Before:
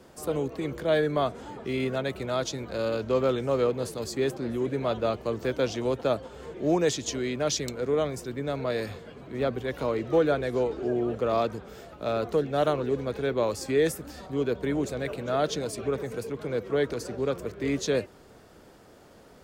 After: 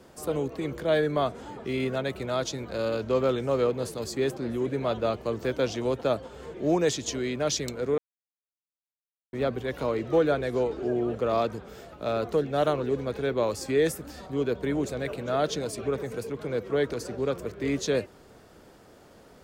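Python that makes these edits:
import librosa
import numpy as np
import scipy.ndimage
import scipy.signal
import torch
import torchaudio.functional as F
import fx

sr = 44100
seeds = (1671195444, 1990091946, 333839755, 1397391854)

y = fx.edit(x, sr, fx.silence(start_s=7.98, length_s=1.35), tone=tone)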